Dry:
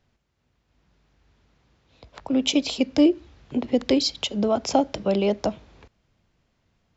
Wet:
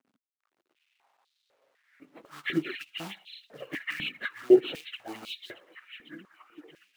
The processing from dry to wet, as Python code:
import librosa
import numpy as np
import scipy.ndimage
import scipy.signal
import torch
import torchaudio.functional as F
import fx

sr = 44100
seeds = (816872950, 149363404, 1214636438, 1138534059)

y = fx.pitch_bins(x, sr, semitones=-10.0)
y = fx.env_flanger(y, sr, rest_ms=7.6, full_db=-19.5)
y = fx.echo_stepped(y, sr, ms=628, hz=3500.0, octaves=-0.7, feedback_pct=70, wet_db=-5.5)
y = fx.quant_companded(y, sr, bits=6)
y = fx.high_shelf(y, sr, hz=4700.0, db=-7.0)
y = fx.filter_held_highpass(y, sr, hz=4.0, low_hz=240.0, high_hz=3900.0)
y = y * librosa.db_to_amplitude(-3.0)